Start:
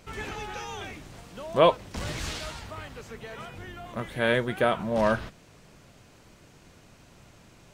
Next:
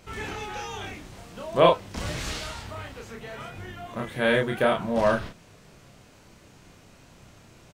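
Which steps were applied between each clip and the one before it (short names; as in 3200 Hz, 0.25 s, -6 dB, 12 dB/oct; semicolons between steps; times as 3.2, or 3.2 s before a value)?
doubler 30 ms -3 dB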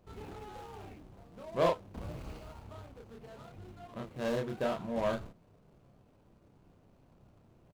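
median filter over 25 samples; gain -9 dB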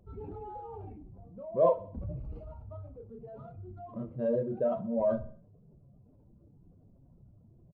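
spectral contrast raised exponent 2.1; feedback echo 63 ms, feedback 49%, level -17 dB; gain +4 dB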